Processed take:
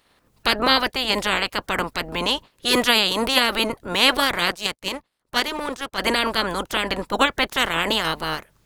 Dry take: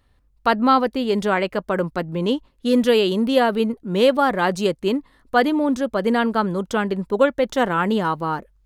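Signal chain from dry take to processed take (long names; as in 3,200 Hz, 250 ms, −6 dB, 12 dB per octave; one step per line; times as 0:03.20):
ceiling on every frequency bin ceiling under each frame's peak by 28 dB
0:04.51–0:05.98: power curve on the samples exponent 1.4
level −1.5 dB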